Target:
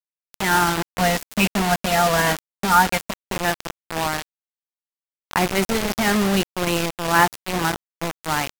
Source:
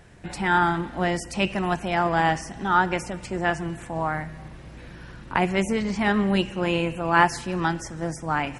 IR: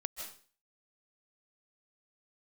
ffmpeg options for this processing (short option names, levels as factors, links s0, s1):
-filter_complex "[0:a]asettb=1/sr,asplit=3[s0][s1][s2];[s0]atrim=end=0.894[s3];[s1]atrim=start=0.89:end=3.37,asetpts=PTS-STARTPTS,afade=t=in:d=0.004:c=qsin,afade=t=out:st=2.476:d=0.004:c=qsin,aecho=1:1:4.3:0.82,atrim=end_sample=109368[s4];[s2]atrim=start=3.366[s5];[s3][s4]acrossfade=d=0.004:c1=hsin:c2=qsin[s6];[s6][s5]acrossfade=d=0.004:c1=qsin:c2=hsin,acrusher=bits=3:mix=0:aa=0.000001[s7];[1:a]atrim=start_sample=2205,atrim=end_sample=3969,asetrate=35721,aresample=44100[s8];[s7][s8]afir=irnorm=-1:irlink=0,volume=1.33"